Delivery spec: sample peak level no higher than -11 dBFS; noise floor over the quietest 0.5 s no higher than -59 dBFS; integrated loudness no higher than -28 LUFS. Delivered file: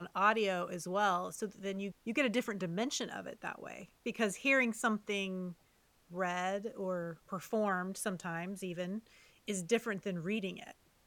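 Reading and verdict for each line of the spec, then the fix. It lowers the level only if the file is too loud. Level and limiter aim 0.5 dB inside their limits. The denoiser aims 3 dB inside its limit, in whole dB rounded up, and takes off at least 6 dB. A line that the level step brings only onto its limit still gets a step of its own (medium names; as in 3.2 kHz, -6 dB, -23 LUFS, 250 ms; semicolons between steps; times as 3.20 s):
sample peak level -16.5 dBFS: pass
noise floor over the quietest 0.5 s -70 dBFS: pass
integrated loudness -36.0 LUFS: pass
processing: none needed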